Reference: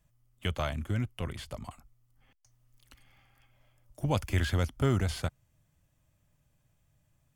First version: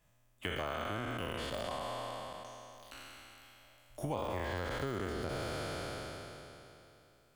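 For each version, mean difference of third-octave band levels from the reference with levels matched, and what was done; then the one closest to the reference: 10.0 dB: spectral trails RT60 2.94 s; de-esser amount 100%; tone controls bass -10 dB, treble -4 dB; compressor 4:1, threshold -39 dBFS, peak gain reduction 13.5 dB; gain +3.5 dB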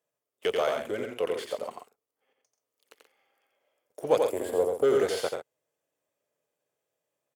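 7.5 dB: spectral gain 4.19–4.84, 1200–7000 Hz -16 dB; sample leveller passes 2; resonant high-pass 450 Hz, resonance Q 5.6; loudspeakers at several distances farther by 30 m -4 dB, 45 m -10 dB; gain -5 dB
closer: second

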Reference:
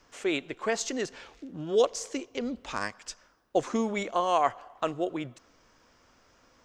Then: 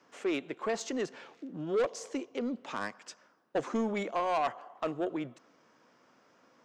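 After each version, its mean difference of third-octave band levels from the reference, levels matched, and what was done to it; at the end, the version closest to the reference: 3.0 dB: HPF 150 Hz 24 dB/oct; high shelf 3000 Hz -9.5 dB; soft clip -24 dBFS, distortion -10 dB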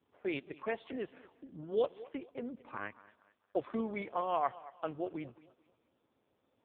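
7.0 dB: low-pass opened by the level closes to 700 Hz, open at -23.5 dBFS; thinning echo 0.222 s, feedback 36%, high-pass 170 Hz, level -18.5 dB; gain -7 dB; AMR-NB 5.15 kbps 8000 Hz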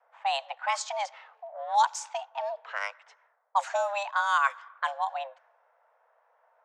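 11.5 dB: low-pass opened by the level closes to 740 Hz, open at -23 dBFS; HPF 110 Hz 12 dB/oct; frequency shift +400 Hz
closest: first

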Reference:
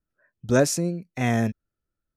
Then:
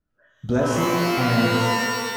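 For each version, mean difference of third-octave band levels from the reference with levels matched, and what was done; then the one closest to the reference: 13.5 dB: LPF 2500 Hz 6 dB/oct; compressor 4:1, threshold -27 dBFS, peak gain reduction 11 dB; shimmer reverb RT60 2.1 s, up +12 st, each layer -2 dB, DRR -2 dB; gain +5 dB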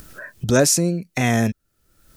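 3.5 dB: high shelf 3300 Hz +8.5 dB; in parallel at +1.5 dB: limiter -20 dBFS, peak gain reduction 12 dB; on the sum: upward compressor, threshold -19 dBFS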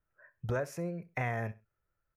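5.5 dB: graphic EQ 125/250/500/1000/2000/4000/8000 Hz +4/-11/+4/+6/+7/-10/-10 dB; compressor 6:1, threshold -32 dBFS, peak gain reduction 19 dB; feedback echo 65 ms, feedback 24%, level -19 dB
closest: second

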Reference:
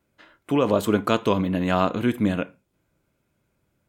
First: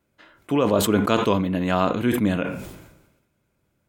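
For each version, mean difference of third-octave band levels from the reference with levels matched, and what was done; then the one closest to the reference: 2.5 dB: sustainer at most 55 dB/s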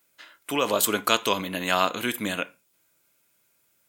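8.5 dB: tilt +4.5 dB/oct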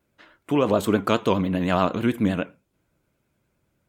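1.0 dB: vibrato 9.6 Hz 81 cents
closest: third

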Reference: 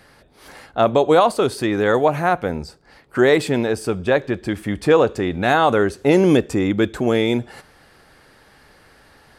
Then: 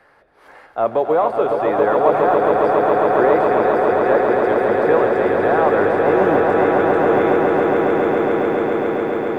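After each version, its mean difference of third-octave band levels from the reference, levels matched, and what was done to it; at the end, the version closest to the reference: 10.0 dB: notches 60/120/180/240 Hz; de-esser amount 85%; three-band isolator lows -13 dB, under 410 Hz, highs -18 dB, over 2100 Hz; on a send: swelling echo 0.137 s, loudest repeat 8, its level -5.5 dB; on the sum: gain +1.5 dB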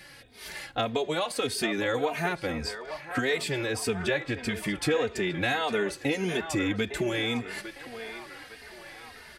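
7.5 dB: resonant high shelf 1600 Hz +7.5 dB, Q 1.5; compressor 4:1, threshold -23 dBFS, peak gain reduction 12.5 dB; narrowing echo 0.856 s, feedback 67%, band-pass 1100 Hz, level -8 dB; endless flanger 3 ms -1.7 Hz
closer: second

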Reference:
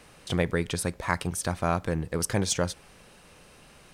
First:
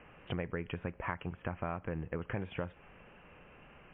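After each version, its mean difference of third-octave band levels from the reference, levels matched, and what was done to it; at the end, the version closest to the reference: 10.0 dB: elliptic low-pass 2800 Hz, stop band 40 dB; compressor 5:1, threshold -32 dBFS, peak gain reduction 11.5 dB; gain -1.5 dB; MP3 32 kbps 8000 Hz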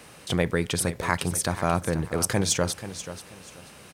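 4.0 dB: HPF 72 Hz; high shelf 10000 Hz +6 dB; in parallel at +1 dB: level quantiser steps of 19 dB; on the sum: feedback echo 0.484 s, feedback 26%, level -12.5 dB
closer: second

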